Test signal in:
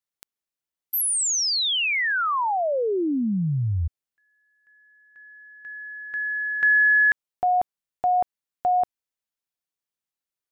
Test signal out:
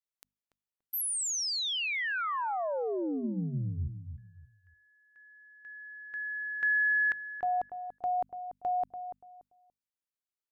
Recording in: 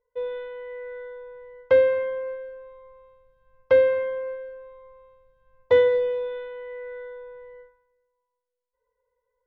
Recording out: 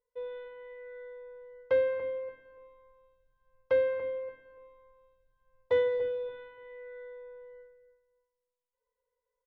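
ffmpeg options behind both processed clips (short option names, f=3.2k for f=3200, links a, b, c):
-filter_complex "[0:a]bandreject=f=50:t=h:w=6,bandreject=f=100:t=h:w=6,bandreject=f=150:t=h:w=6,bandreject=f=200:t=h:w=6,bandreject=f=250:t=h:w=6,asplit=2[a][b];[b]adelay=288,lowpass=f=980:p=1,volume=-8.5dB,asplit=2[c][d];[d]adelay=288,lowpass=f=980:p=1,volume=0.28,asplit=2[e][f];[f]adelay=288,lowpass=f=980:p=1,volume=0.28[g];[a][c][e][g]amix=inputs=4:normalize=0,volume=-9dB"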